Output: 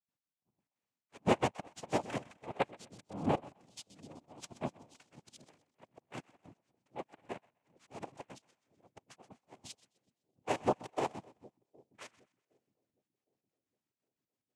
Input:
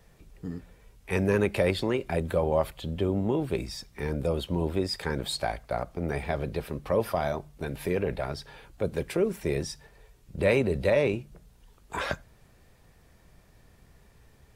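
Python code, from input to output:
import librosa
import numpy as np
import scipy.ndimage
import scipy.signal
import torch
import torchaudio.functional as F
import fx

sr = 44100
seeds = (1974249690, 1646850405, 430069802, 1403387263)

p1 = np.minimum(x, 2.0 * 10.0 ** (-17.0 / 20.0) - x)
p2 = fx.env_lowpass_down(p1, sr, base_hz=2300.0, full_db=-22.0)
p3 = fx.high_shelf(p2, sr, hz=2400.0, db=9.5)
p4 = fx.hum_notches(p3, sr, base_hz=50, count=3)
p5 = fx.auto_swell(p4, sr, attack_ms=198.0)
p6 = fx.noise_vocoder(p5, sr, seeds[0], bands=4)
p7 = fx.step_gate(p6, sr, bpm=179, pattern='.x.x.x.x.xxx.x', floor_db=-12.0, edge_ms=4.5)
p8 = p7 + fx.echo_split(p7, sr, split_hz=580.0, low_ms=763, high_ms=127, feedback_pct=52, wet_db=-8.0, dry=0)
y = fx.upward_expand(p8, sr, threshold_db=-46.0, expansion=2.5)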